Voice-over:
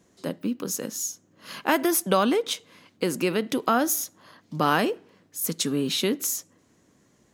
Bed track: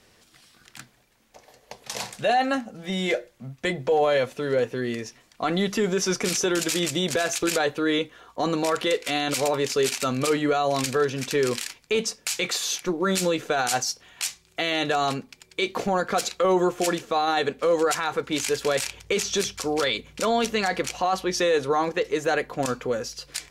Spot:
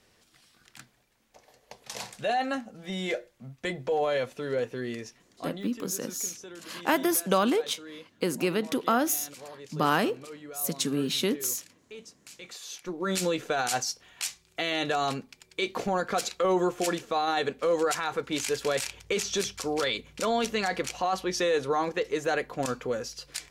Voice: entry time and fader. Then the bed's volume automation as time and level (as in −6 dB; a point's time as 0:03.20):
5.20 s, −2.5 dB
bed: 0:05.12 −6 dB
0:05.81 −21 dB
0:12.33 −21 dB
0:13.18 −4 dB